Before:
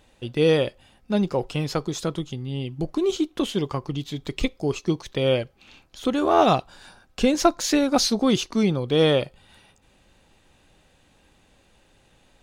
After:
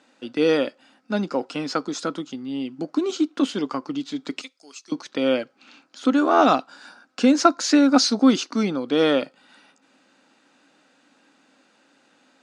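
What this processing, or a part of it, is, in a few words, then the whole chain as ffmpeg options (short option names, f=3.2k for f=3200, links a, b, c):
television speaker: -filter_complex "[0:a]asettb=1/sr,asplit=3[a][b][c];[a]atrim=end=4.414[d];[b]atrim=start=4.41:end=4.92,asetpts=PTS-STARTPTS,afade=t=in:d=0.004:c=qsin,afade=t=out:st=0.506:d=0.004:c=qsin,aderivative[e];[c]atrim=start=4.916[f];[d][e]acrossfade=d=0.004:c1=hsin:c2=qsin[g];[g][f]acrossfade=d=0.004:c1=qsin:c2=hsin,highpass=f=220:w=0.5412,highpass=f=220:w=1.3066,equalizer=f=270:t=q:w=4:g=9,equalizer=f=390:t=q:w=4:g=-5,equalizer=f=1.4k:t=q:w=4:g=9,equalizer=f=3.3k:t=q:w=4:g=-3,equalizer=f=4.8k:t=q:w=4:g=4,lowpass=f=8.3k:w=0.5412,lowpass=f=8.3k:w=1.3066"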